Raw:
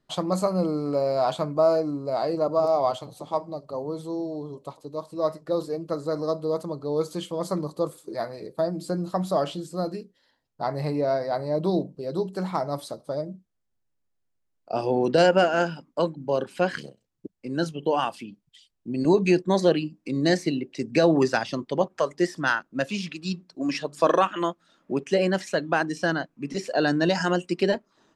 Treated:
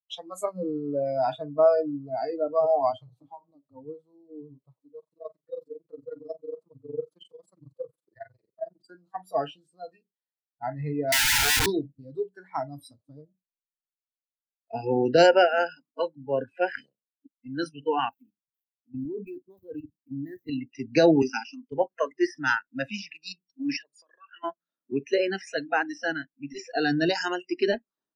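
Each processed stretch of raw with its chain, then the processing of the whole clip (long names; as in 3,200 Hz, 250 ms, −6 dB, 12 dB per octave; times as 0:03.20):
0:03.11–0:03.51: high-shelf EQ 7,200 Hz −9 dB + comb filter 6.3 ms, depth 88% + downward compressor 8 to 1, threshold −25 dBFS
0:04.99–0:08.91: amplitude modulation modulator 22 Hz, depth 95% + one half of a high-frequency compander encoder only
0:11.12–0:11.66: mid-hump overdrive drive 35 dB, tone 1,500 Hz, clips at −14.5 dBFS + parametric band 370 Hz +12.5 dB 0.56 octaves + wrap-around overflow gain 17.5 dB
0:18.09–0:20.49: running median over 9 samples + parametric band 2,300 Hz −11 dB 1.5 octaves + output level in coarse steps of 14 dB
0:21.22–0:21.72: high-pass filter 200 Hz 24 dB per octave + phaser with its sweep stopped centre 2,700 Hz, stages 8 + multiband upward and downward expander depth 40%
0:23.76–0:24.44: spectral envelope exaggerated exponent 1.5 + high-pass filter 1,300 Hz 6 dB per octave + downward compressor 20 to 1, threshold −30 dBFS
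whole clip: noise reduction from a noise print of the clip's start 26 dB; multiband upward and downward expander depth 40%; level −1.5 dB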